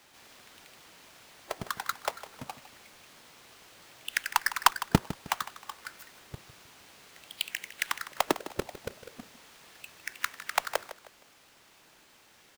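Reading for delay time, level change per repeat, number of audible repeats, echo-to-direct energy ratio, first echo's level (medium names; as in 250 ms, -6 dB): 156 ms, -9.5 dB, 3, -14.0 dB, -14.5 dB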